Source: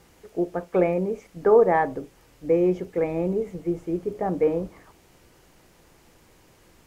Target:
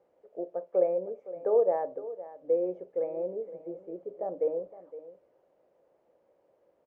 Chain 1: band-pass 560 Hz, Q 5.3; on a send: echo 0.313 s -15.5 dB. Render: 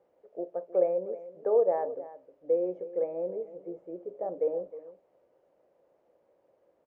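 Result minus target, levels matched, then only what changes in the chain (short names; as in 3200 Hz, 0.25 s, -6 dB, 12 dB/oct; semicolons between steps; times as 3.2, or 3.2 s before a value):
echo 0.2 s early
change: echo 0.513 s -15.5 dB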